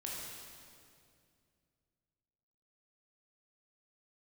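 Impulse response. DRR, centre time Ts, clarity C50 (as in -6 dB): -4.5 dB, 0.125 s, -1.5 dB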